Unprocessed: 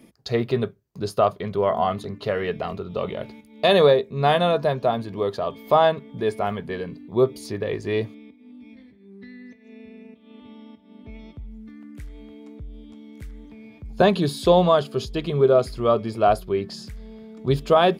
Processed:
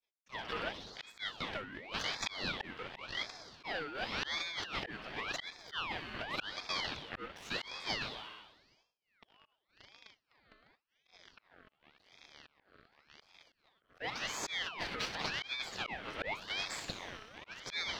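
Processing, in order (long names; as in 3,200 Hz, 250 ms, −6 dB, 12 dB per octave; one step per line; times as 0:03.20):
mains-hum notches 60/120/180/240/300/360/420 Hz
in parallel at −7.5 dB: fuzz pedal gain 38 dB, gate −37 dBFS
on the sum: three-way crossover with the lows and the highs turned down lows −19 dB, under 510 Hz, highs −22 dB, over 3,400 Hz
on a send: delay with a high-pass on its return 62 ms, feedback 80%, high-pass 1,800 Hz, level −11 dB
on the sum: downward expander −48 dBFS
volume swells 556 ms
high-pass filter 210 Hz
compressor whose output falls as the input rises −31 dBFS, ratio −1
dynamic equaliser 2,000 Hz, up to +5 dB, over −51 dBFS, Q 2.4
ring modulator whose carrier an LFO sweeps 1,900 Hz, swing 55%, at 0.9 Hz
level −5.5 dB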